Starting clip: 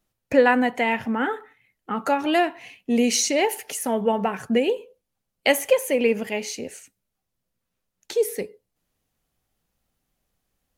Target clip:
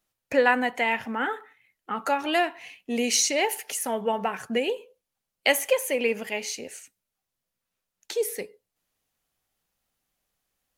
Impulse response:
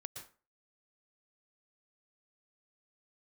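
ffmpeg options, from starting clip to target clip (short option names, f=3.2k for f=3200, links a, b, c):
-af "lowshelf=f=470:g=-10"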